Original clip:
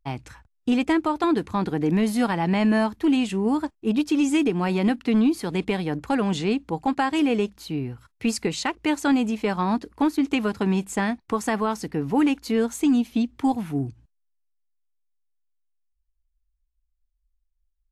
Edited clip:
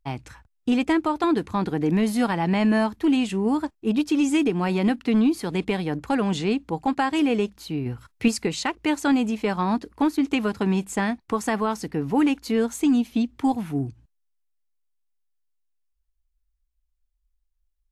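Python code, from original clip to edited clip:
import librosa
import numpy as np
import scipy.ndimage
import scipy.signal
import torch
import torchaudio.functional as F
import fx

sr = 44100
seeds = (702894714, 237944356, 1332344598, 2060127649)

y = fx.edit(x, sr, fx.clip_gain(start_s=7.86, length_s=0.42, db=4.5), tone=tone)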